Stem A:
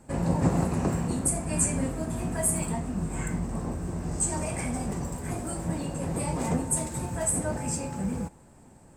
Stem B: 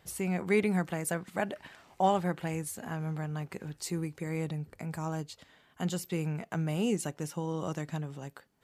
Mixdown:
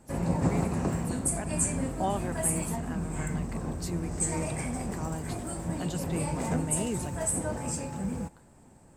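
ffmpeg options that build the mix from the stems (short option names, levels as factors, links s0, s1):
-filter_complex "[0:a]volume=0.75[s0];[1:a]dynaudnorm=f=200:g=17:m=3.76,volume=0.211[s1];[s0][s1]amix=inputs=2:normalize=0"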